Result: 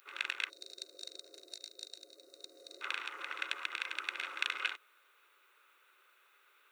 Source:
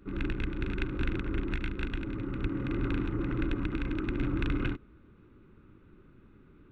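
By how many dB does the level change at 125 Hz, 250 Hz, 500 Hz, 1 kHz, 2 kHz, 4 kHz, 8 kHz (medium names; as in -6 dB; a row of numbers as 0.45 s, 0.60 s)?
under -40 dB, -33.0 dB, -17.5 dB, -1.5 dB, +2.0 dB, +7.5 dB, no reading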